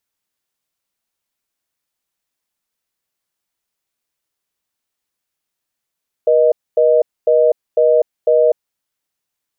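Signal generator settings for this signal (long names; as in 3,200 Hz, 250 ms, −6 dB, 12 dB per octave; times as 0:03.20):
call progress tone reorder tone, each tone −11.5 dBFS 2.30 s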